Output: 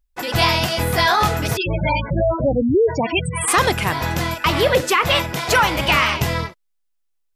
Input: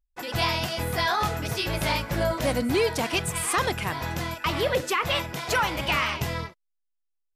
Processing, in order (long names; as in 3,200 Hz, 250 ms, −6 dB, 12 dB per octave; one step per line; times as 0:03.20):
0:01.57–0:03.48: gate on every frequency bin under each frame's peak −10 dB strong
level +8.5 dB